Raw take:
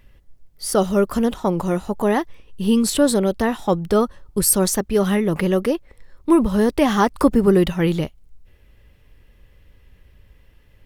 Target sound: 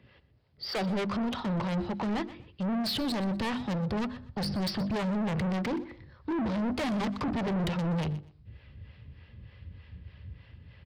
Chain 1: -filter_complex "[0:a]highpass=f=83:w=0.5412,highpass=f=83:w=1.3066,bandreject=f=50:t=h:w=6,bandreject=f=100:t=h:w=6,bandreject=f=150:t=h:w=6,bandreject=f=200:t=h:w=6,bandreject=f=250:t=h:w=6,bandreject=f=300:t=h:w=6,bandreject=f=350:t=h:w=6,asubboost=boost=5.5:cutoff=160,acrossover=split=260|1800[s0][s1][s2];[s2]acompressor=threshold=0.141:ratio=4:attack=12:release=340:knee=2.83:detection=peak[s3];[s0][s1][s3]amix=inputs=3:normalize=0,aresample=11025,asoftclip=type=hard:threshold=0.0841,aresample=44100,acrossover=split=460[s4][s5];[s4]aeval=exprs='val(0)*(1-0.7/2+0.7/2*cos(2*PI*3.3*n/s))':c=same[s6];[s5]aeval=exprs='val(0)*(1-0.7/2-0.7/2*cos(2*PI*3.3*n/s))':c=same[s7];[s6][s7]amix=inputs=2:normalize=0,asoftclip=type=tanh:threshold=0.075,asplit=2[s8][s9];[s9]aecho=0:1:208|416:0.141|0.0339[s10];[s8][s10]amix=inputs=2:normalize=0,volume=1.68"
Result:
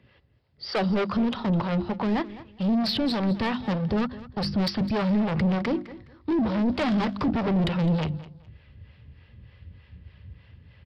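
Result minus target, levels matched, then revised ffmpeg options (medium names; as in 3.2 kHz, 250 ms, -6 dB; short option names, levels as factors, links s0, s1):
echo 85 ms late; saturation: distortion -11 dB
-filter_complex "[0:a]highpass=f=83:w=0.5412,highpass=f=83:w=1.3066,bandreject=f=50:t=h:w=6,bandreject=f=100:t=h:w=6,bandreject=f=150:t=h:w=6,bandreject=f=200:t=h:w=6,bandreject=f=250:t=h:w=6,bandreject=f=300:t=h:w=6,bandreject=f=350:t=h:w=6,asubboost=boost=5.5:cutoff=160,acrossover=split=260|1800[s0][s1][s2];[s2]acompressor=threshold=0.141:ratio=4:attack=12:release=340:knee=2.83:detection=peak[s3];[s0][s1][s3]amix=inputs=3:normalize=0,aresample=11025,asoftclip=type=hard:threshold=0.0841,aresample=44100,acrossover=split=460[s4][s5];[s4]aeval=exprs='val(0)*(1-0.7/2+0.7/2*cos(2*PI*3.3*n/s))':c=same[s6];[s5]aeval=exprs='val(0)*(1-0.7/2-0.7/2*cos(2*PI*3.3*n/s))':c=same[s7];[s6][s7]amix=inputs=2:normalize=0,asoftclip=type=tanh:threshold=0.0237,asplit=2[s8][s9];[s9]aecho=0:1:123|246:0.141|0.0339[s10];[s8][s10]amix=inputs=2:normalize=0,volume=1.68"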